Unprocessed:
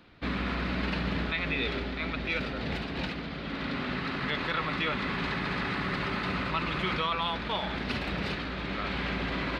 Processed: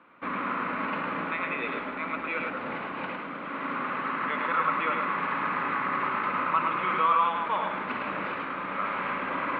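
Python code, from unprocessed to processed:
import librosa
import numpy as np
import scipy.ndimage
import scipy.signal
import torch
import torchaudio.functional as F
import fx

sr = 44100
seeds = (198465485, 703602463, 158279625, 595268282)

y = fx.cabinet(x, sr, low_hz=390.0, low_slope=12, high_hz=2100.0, hz=(400.0, 710.0, 1100.0, 1800.0), db=(-8, -7, 6, -6))
y = y + 10.0 ** (-4.0 / 20.0) * np.pad(y, (int(106 * sr / 1000.0), 0))[:len(y)]
y = F.gain(torch.from_numpy(y), 5.0).numpy()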